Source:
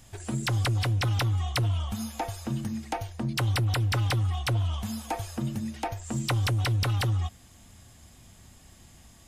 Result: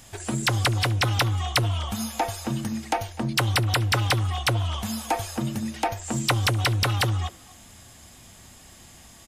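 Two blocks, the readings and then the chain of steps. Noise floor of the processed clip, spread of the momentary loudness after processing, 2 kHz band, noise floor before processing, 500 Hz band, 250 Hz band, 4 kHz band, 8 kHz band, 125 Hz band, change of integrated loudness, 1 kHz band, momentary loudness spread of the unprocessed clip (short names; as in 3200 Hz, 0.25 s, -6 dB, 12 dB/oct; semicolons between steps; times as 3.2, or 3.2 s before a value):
-49 dBFS, 7 LU, +7.5 dB, -54 dBFS, +6.0 dB, +3.5 dB, +7.5 dB, +7.5 dB, +1.0 dB, +3.5 dB, +7.0 dB, 8 LU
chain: low shelf 230 Hz -8 dB; speakerphone echo 0.25 s, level -19 dB; gain +7.5 dB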